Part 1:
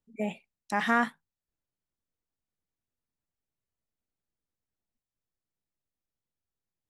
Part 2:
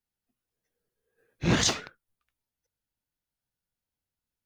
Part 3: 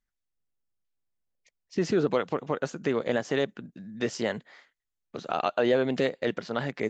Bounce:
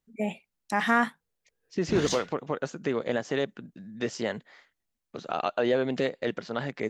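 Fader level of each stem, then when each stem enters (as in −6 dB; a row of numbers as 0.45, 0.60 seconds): +2.0, −8.0, −1.5 decibels; 0.00, 0.45, 0.00 seconds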